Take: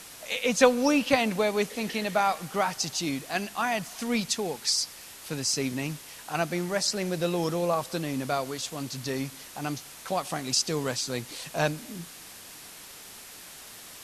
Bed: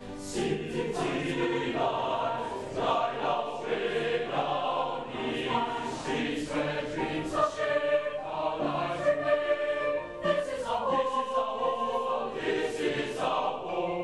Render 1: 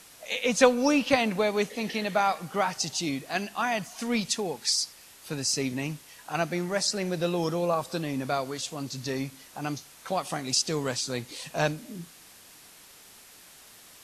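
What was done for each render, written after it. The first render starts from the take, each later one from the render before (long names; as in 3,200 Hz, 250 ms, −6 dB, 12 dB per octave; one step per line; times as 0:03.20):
noise reduction from a noise print 6 dB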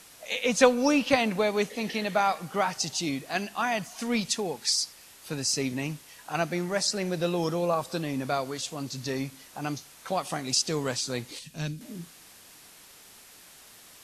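0:11.39–0:11.81: drawn EQ curve 210 Hz 0 dB, 710 Hz −20 dB, 3,400 Hz −5 dB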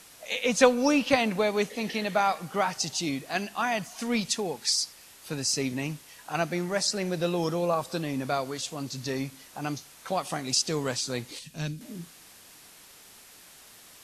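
no processing that can be heard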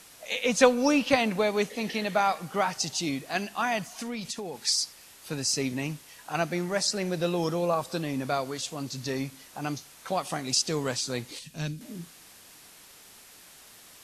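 0:03.94–0:04.60: downward compressor, threshold −31 dBFS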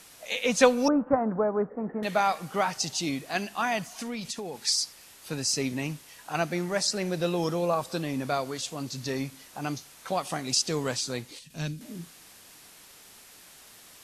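0:00.88–0:02.03: Butterworth low-pass 1,500 Hz 48 dB per octave
0:11.03–0:11.50: fade out, to −6.5 dB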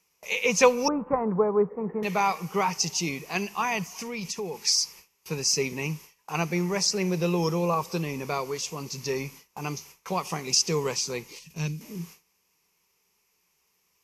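noise gate with hold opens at −37 dBFS
EQ curve with evenly spaced ripples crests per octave 0.79, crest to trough 11 dB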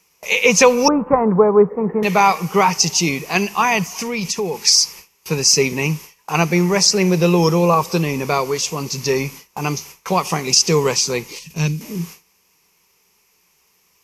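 boost into a limiter +11 dB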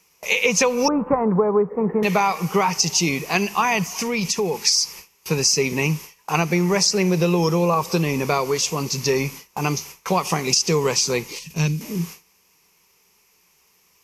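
downward compressor 6 to 1, threshold −15 dBFS, peak gain reduction 9 dB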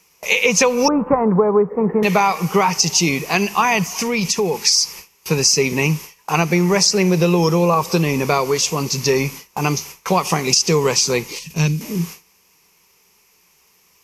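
level +3.5 dB
brickwall limiter −2 dBFS, peak gain reduction 1.5 dB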